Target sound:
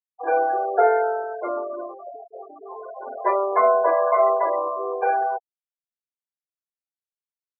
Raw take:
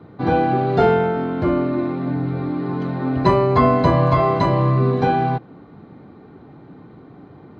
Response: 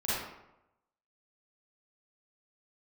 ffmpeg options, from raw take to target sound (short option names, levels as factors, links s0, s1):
-af "highpass=f=430:w=0.5412,highpass=f=430:w=1.3066,equalizer=f=470:t=q:w=4:g=6,equalizer=f=680:t=q:w=4:g=10,equalizer=f=1100:t=q:w=4:g=4,equalizer=f=1600:t=q:w=4:g=8,equalizer=f=2400:t=q:w=4:g=6,lowpass=f=2900:w=0.5412,lowpass=f=2900:w=1.3066,afftfilt=real='re*gte(hypot(re,im),0.178)':imag='im*gte(hypot(re,im),0.178)':win_size=1024:overlap=0.75,volume=0.447"